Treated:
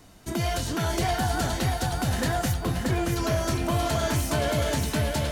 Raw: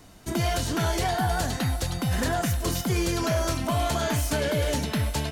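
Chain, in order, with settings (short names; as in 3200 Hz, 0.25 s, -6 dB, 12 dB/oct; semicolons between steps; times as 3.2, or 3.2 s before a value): 2.54–3.16 Gaussian blur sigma 2.7 samples; lo-fi delay 0.629 s, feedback 35%, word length 9-bit, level -3.5 dB; gain -1.5 dB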